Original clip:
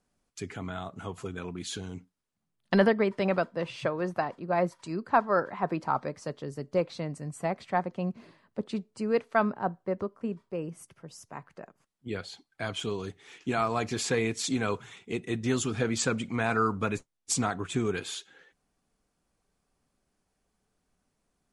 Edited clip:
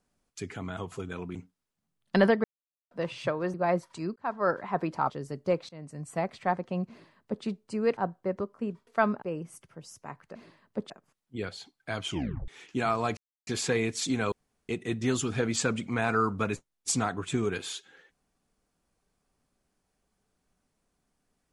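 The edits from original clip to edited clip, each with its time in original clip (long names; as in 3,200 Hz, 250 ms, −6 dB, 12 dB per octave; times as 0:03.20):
0:00.77–0:01.03: remove
0:01.61–0:01.93: remove
0:03.02–0:03.49: silence
0:04.12–0:04.43: remove
0:05.05–0:05.39: fade in
0:05.99–0:06.37: remove
0:06.96–0:07.52: fade in equal-power, from −21 dB
0:08.16–0:08.71: duplicate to 0:11.62
0:09.24–0:09.59: move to 0:10.49
0:12.80: tape stop 0.40 s
0:13.89: splice in silence 0.30 s
0:14.74–0:15.11: fill with room tone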